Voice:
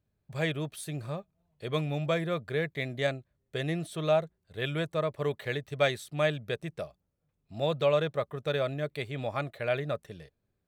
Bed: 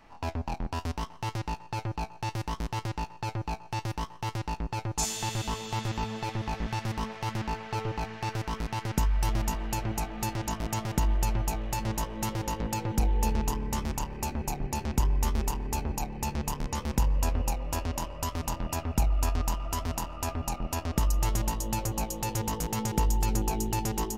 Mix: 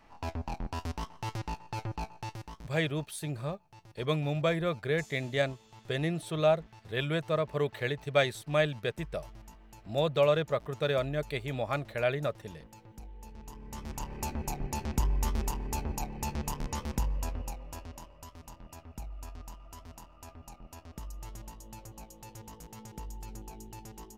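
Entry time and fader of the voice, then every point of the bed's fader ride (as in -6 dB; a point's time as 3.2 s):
2.35 s, +0.5 dB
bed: 2.12 s -3.5 dB
2.92 s -22 dB
13.3 s -22 dB
14.13 s -3 dB
16.74 s -3 dB
18.31 s -17 dB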